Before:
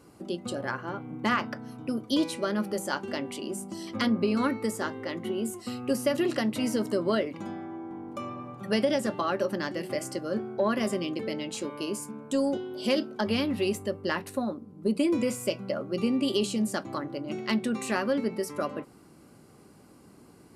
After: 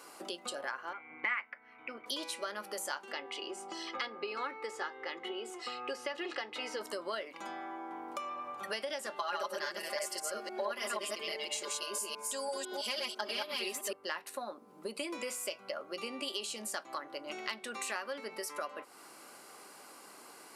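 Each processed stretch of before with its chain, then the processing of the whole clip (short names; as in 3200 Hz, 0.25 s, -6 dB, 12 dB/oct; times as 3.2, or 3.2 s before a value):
0.93–2.06 synth low-pass 2200 Hz, resonance Q 11 + notch 600 Hz, Q 17 + upward expander, over -34 dBFS
3.12–6.81 LPF 4000 Hz + comb 2.4 ms, depth 56%
9.16–13.93 reverse delay 0.166 s, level -0.5 dB + tone controls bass -3 dB, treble +4 dB + comb 4.9 ms, depth 72%
whole clip: HPF 790 Hz 12 dB/oct; compressor 3:1, threshold -50 dBFS; gain +9.5 dB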